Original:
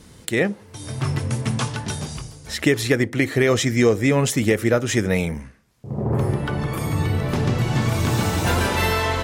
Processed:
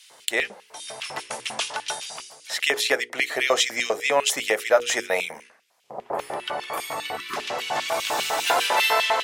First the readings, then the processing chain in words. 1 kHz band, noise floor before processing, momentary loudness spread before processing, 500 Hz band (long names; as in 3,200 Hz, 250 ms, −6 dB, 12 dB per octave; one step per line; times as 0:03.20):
+2.5 dB, −47 dBFS, 10 LU, −3.5 dB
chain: auto-filter high-pass square 5 Hz 700–2,800 Hz
mains-hum notches 60/120/180/240/300/360/420/480 Hz
time-frequency box erased 0:07.17–0:07.37, 430–980 Hz